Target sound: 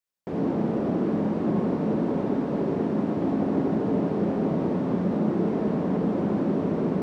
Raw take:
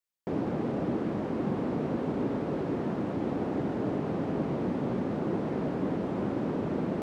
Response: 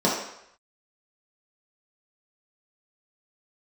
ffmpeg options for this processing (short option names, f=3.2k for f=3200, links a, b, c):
-filter_complex "[0:a]asplit=2[a][b];[1:a]atrim=start_sample=2205,adelay=68[c];[b][c]afir=irnorm=-1:irlink=0,volume=-18dB[d];[a][d]amix=inputs=2:normalize=0"